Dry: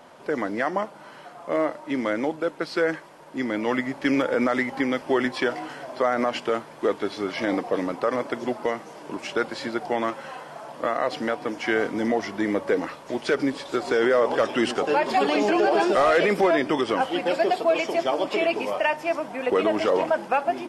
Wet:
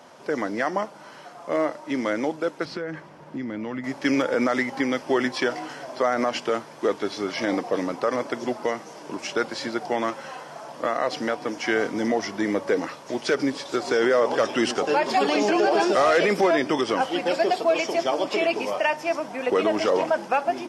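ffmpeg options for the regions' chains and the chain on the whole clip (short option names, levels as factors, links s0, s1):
-filter_complex "[0:a]asettb=1/sr,asplit=3[s0][s1][s2];[s0]atrim=end=2.654[s3];[s1]atrim=start=2.65:end=3.84,asetpts=PTS-STARTPTS,afade=t=in:d=0.004:c=qsin,afade=t=out:st=1.186:d=0.004:c=qsin,bass=f=250:g=12,treble=f=4000:g=-10,acompressor=threshold=0.0398:ratio=5:attack=3.2:release=140:knee=1:detection=peak[s4];[s2]atrim=start=3.836[s5];[s3][s4]acrossfade=d=0.004:c1=hsin:c2=qsin[s6];[s6][s5]acrossfade=d=0.004:c1=qsin:c2=hsin,highpass=72,equalizer=f=5700:w=2.1:g=7.5"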